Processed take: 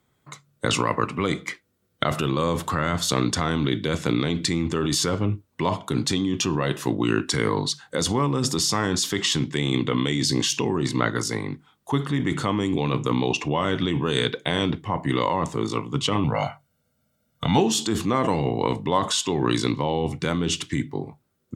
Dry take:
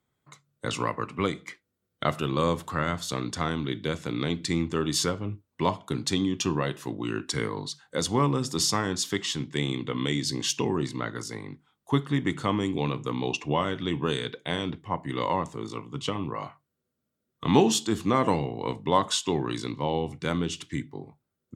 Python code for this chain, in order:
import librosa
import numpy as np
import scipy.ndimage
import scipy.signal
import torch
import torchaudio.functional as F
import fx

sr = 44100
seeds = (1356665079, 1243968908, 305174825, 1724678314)

p1 = fx.comb(x, sr, ms=1.4, depth=0.84, at=(16.24, 17.58))
p2 = fx.over_compress(p1, sr, threshold_db=-31.0, ratio=-0.5)
y = p1 + (p2 * 10.0 ** (2.0 / 20.0))